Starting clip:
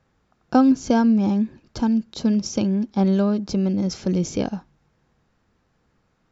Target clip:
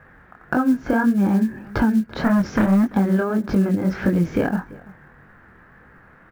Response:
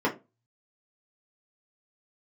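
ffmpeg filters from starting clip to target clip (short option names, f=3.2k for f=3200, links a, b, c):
-filter_complex "[0:a]asettb=1/sr,asplit=3[a][b][c];[a]atrim=end=2.144[d];[b]atrim=start=2.14:end=2.92,asetpts=PTS-STARTPTS,afade=t=in:d=0.004:c=qsin,afade=t=out:st=0.776:d=0.004:c=qsin,volume=23dB,asoftclip=hard,volume=-23dB[e];[c]atrim=start=2.916[f];[d][e]acrossfade=d=0.004:c1=hsin:c2=qsin[g];[g][f]acrossfade=d=0.004:c1=qsin:c2=hsin,acompressor=threshold=-31dB:ratio=10,asplit=2[h][i];[i]adelay=338.2,volume=-21dB,highshelf=f=4k:g=-7.61[j];[h][j]amix=inputs=2:normalize=0,flanger=delay=20:depth=7.7:speed=1.7,lowpass=f=1.7k:t=q:w=4.2,acrusher=bits=8:mode=log:mix=0:aa=0.000001,alimiter=level_in=24.5dB:limit=-1dB:release=50:level=0:latency=1,volume=-7dB"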